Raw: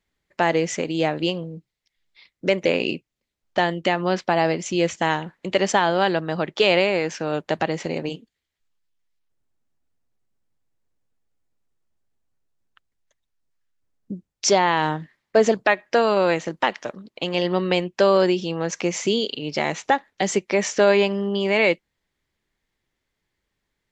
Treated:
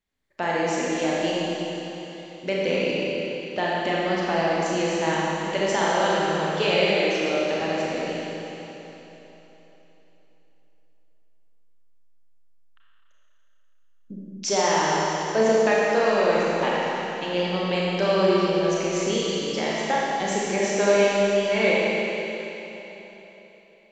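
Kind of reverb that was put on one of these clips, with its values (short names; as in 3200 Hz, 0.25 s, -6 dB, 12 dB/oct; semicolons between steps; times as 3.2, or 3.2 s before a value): Schroeder reverb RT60 3.6 s, combs from 28 ms, DRR -6 dB; gain -8 dB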